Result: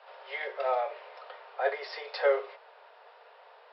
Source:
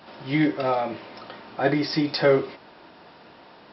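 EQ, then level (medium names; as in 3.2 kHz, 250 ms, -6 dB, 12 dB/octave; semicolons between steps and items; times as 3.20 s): steep high-pass 430 Hz 96 dB/octave; distance through air 250 m; -3.5 dB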